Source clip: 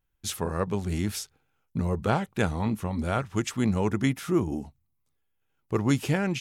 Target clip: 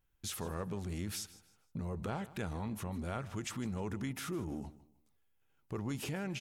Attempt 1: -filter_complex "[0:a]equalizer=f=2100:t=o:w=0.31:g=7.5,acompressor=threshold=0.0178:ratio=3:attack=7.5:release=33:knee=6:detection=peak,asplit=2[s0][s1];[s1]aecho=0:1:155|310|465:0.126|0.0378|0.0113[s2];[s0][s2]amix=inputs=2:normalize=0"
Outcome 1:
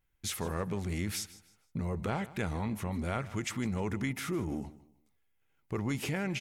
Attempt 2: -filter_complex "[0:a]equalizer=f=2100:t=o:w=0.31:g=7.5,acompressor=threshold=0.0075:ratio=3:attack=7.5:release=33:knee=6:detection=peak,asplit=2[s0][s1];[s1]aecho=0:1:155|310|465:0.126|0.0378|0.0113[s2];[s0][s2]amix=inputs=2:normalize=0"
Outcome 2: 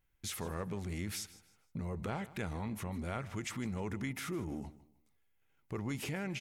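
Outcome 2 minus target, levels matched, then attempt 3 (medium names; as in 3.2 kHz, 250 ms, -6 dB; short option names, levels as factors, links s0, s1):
2 kHz band +2.5 dB
-filter_complex "[0:a]acompressor=threshold=0.0075:ratio=3:attack=7.5:release=33:knee=6:detection=peak,asplit=2[s0][s1];[s1]aecho=0:1:155|310|465:0.126|0.0378|0.0113[s2];[s0][s2]amix=inputs=2:normalize=0"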